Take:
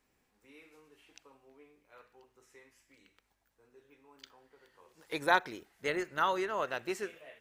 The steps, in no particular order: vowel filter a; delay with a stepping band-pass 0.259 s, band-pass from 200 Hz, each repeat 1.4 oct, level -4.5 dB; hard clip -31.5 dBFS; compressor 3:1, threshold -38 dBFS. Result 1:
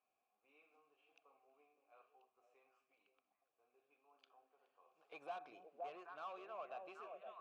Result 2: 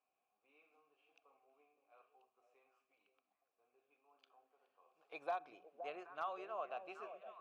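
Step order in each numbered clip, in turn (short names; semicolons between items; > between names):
delay with a stepping band-pass > hard clip > compressor > vowel filter; vowel filter > compressor > delay with a stepping band-pass > hard clip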